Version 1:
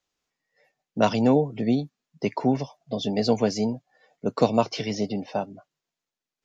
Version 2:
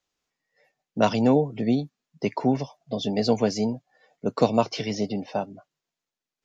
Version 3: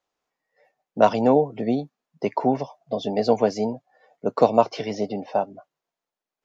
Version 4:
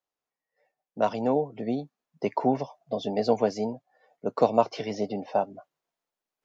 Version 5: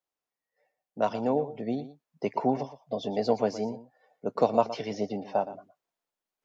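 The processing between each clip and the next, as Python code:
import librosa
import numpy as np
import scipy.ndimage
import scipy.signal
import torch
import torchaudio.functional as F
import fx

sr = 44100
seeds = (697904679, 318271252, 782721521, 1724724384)

y1 = x
y2 = fx.peak_eq(y1, sr, hz=730.0, db=12.0, octaves=2.6)
y2 = y2 * librosa.db_to_amplitude(-6.0)
y3 = fx.rider(y2, sr, range_db=10, speed_s=2.0)
y3 = y3 * librosa.db_to_amplitude(-4.5)
y4 = y3 + 10.0 ** (-14.5 / 20.0) * np.pad(y3, (int(117 * sr / 1000.0), 0))[:len(y3)]
y4 = y4 * librosa.db_to_amplitude(-2.0)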